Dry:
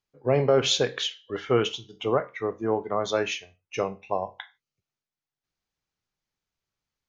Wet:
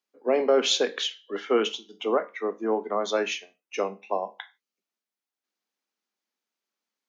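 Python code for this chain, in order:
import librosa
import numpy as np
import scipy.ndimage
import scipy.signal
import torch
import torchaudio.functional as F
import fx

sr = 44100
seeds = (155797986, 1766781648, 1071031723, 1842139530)

y = scipy.signal.sosfilt(scipy.signal.butter(12, 200.0, 'highpass', fs=sr, output='sos'), x)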